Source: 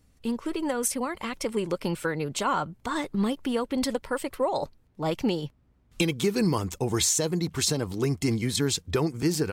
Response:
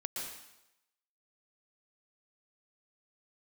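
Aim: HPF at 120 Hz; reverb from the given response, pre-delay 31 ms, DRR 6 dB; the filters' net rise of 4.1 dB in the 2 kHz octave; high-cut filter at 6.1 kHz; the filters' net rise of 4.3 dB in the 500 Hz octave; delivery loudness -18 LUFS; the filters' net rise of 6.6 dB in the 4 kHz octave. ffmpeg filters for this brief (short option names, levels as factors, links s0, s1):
-filter_complex "[0:a]highpass=120,lowpass=6100,equalizer=f=500:t=o:g=5,equalizer=f=2000:t=o:g=3,equalizer=f=4000:t=o:g=8,asplit=2[s0][s1];[1:a]atrim=start_sample=2205,adelay=31[s2];[s1][s2]afir=irnorm=-1:irlink=0,volume=0.447[s3];[s0][s3]amix=inputs=2:normalize=0,volume=2.11"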